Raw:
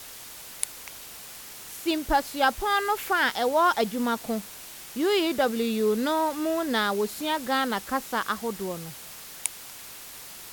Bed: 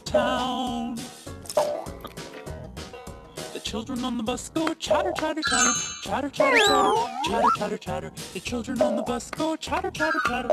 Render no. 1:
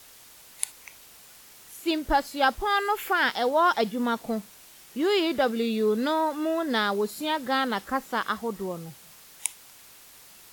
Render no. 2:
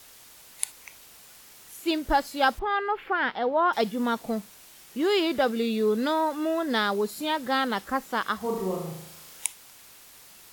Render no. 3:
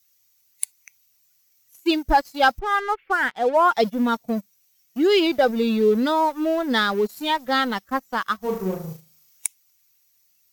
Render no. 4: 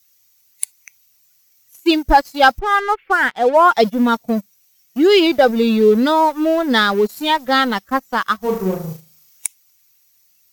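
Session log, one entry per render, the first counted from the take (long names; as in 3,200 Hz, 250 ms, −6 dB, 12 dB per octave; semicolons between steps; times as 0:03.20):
noise reduction from a noise print 8 dB
0:02.59–0:03.73: high-frequency loss of the air 380 metres; 0:08.37–0:09.46: flutter between parallel walls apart 6.4 metres, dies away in 0.75 s
spectral dynamics exaggerated over time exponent 1.5; leveller curve on the samples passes 2
level +6 dB; brickwall limiter −1 dBFS, peak gain reduction 3 dB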